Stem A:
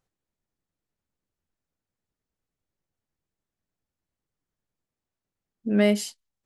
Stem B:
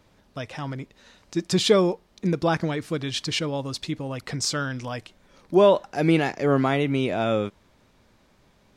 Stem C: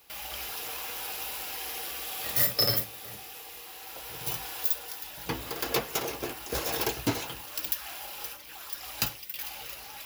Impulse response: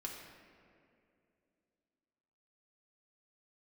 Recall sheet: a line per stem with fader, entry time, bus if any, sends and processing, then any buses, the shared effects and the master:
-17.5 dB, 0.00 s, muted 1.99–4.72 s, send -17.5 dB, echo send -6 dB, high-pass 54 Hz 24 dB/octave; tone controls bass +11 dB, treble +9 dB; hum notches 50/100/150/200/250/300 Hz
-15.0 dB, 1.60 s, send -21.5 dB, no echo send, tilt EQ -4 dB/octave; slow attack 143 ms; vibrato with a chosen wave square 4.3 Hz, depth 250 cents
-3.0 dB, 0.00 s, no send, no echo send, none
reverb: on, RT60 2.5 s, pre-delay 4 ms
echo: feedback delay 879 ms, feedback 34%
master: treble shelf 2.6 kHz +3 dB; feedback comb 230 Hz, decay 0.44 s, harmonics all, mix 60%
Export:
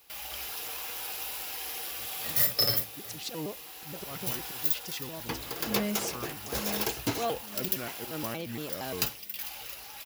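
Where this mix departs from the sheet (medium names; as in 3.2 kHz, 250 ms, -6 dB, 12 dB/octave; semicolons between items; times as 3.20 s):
stem B: missing tilt EQ -4 dB/octave; master: missing feedback comb 230 Hz, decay 0.44 s, harmonics all, mix 60%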